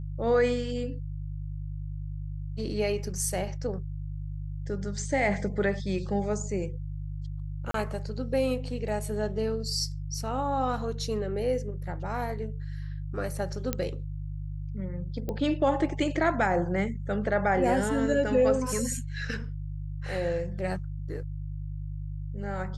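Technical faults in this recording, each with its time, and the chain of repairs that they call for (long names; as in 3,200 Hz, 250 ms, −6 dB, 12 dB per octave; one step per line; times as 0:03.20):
mains hum 50 Hz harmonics 3 −35 dBFS
0:07.71–0:07.74: drop-out 33 ms
0:13.73: click −12 dBFS
0:15.29: click −20 dBFS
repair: click removal
hum removal 50 Hz, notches 3
repair the gap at 0:07.71, 33 ms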